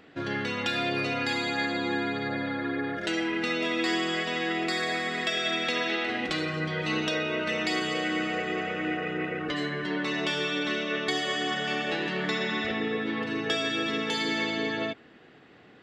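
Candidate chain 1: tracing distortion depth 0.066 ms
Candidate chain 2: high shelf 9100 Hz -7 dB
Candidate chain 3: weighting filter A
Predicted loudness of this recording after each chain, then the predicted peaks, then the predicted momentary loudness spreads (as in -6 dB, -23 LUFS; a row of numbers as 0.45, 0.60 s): -28.5, -29.0, -29.0 LUFS; -12.5, -13.0, -13.0 dBFS; 4, 4, 5 LU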